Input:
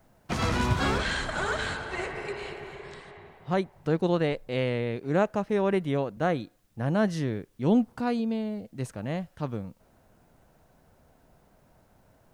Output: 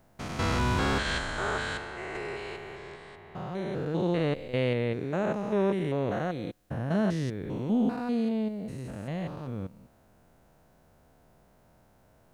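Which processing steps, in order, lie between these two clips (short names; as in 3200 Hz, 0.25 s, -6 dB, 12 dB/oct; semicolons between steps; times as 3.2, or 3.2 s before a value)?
stepped spectrum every 0.2 s; 1.03–2.15 three-band expander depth 70%; gain +1 dB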